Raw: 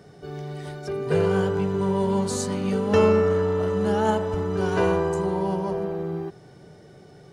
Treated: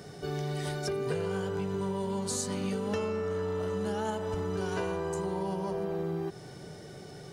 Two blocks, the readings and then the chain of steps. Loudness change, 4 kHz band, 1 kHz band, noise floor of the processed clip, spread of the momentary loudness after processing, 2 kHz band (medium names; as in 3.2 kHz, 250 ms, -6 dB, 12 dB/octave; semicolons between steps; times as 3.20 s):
-9.5 dB, -3.5 dB, -9.0 dB, -47 dBFS, 8 LU, -7.5 dB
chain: treble shelf 3.1 kHz +8 dB; compression 12:1, threshold -31 dBFS, peak gain reduction 18 dB; trim +2 dB